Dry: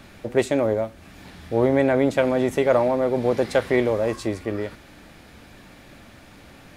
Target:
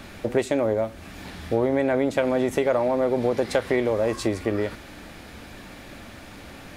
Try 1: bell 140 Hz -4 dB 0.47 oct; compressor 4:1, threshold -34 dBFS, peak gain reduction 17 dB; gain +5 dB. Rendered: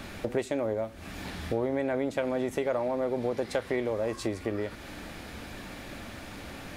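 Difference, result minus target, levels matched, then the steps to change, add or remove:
compressor: peak gain reduction +7 dB
change: compressor 4:1, threshold -24.5 dBFS, peak gain reduction 10 dB

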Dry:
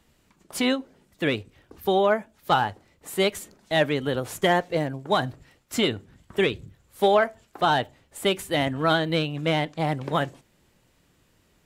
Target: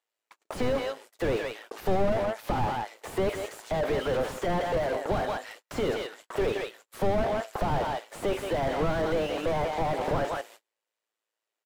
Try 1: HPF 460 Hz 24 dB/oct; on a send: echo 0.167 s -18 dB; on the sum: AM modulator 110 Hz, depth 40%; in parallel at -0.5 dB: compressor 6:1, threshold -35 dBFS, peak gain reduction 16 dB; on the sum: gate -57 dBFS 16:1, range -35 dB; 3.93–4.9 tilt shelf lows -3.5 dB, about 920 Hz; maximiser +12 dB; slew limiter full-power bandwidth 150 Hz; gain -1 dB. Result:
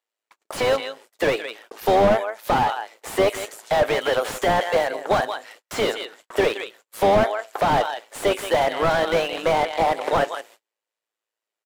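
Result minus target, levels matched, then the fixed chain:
compressor: peak gain reduction +8 dB; slew limiter: distortion -11 dB
HPF 460 Hz 24 dB/oct; on a send: echo 0.167 s -18 dB; on the sum: AM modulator 110 Hz, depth 40%; in parallel at -0.5 dB: compressor 6:1, threshold -25.5 dBFS, peak gain reduction 8.5 dB; on the sum: gate -57 dBFS 16:1, range -35 dB; 3.93–4.9 tilt shelf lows -3.5 dB, about 920 Hz; maximiser +12 dB; slew limiter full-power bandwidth 38.5 Hz; gain -1 dB

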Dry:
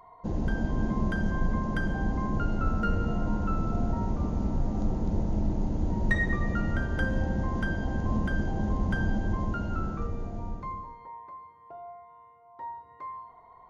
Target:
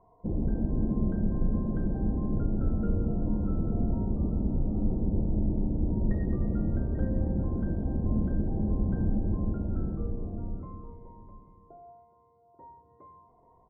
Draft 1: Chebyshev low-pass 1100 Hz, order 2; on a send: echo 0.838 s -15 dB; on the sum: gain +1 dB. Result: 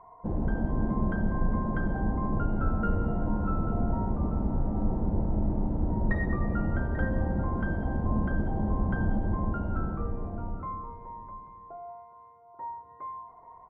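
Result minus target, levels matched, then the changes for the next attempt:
1000 Hz band +12.5 dB
change: Chebyshev low-pass 420 Hz, order 2

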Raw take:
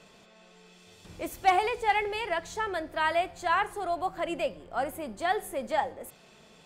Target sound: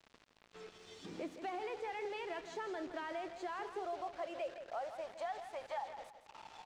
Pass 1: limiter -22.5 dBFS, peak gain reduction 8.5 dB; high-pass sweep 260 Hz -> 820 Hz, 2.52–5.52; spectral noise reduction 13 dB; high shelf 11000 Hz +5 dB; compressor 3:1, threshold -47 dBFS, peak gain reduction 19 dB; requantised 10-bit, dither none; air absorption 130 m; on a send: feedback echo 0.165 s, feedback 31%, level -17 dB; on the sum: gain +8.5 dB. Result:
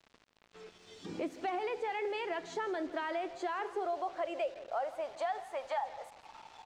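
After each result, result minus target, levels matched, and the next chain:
compressor: peak gain reduction -6.5 dB; echo-to-direct -7 dB
limiter -22.5 dBFS, peak gain reduction 8.5 dB; high-pass sweep 260 Hz -> 820 Hz, 2.52–5.52; spectral noise reduction 13 dB; high shelf 11000 Hz +5 dB; compressor 3:1, threshold -56.5 dBFS, peak gain reduction 25.5 dB; requantised 10-bit, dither none; air absorption 130 m; on a send: feedback echo 0.165 s, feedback 31%, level -17 dB; on the sum: gain +8.5 dB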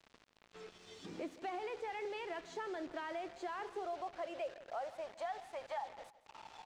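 echo-to-direct -7 dB
limiter -22.5 dBFS, peak gain reduction 8.5 dB; high-pass sweep 260 Hz -> 820 Hz, 2.52–5.52; spectral noise reduction 13 dB; high shelf 11000 Hz +5 dB; compressor 3:1, threshold -56.5 dBFS, peak gain reduction 25.5 dB; requantised 10-bit, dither none; air absorption 130 m; on a send: feedback echo 0.165 s, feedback 31%, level -10 dB; on the sum: gain +8.5 dB

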